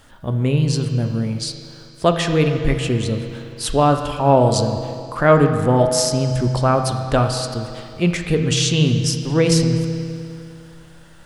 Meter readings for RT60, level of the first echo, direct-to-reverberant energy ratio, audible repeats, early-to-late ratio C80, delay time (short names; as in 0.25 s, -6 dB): 2.5 s, none, 5.0 dB, none, 7.5 dB, none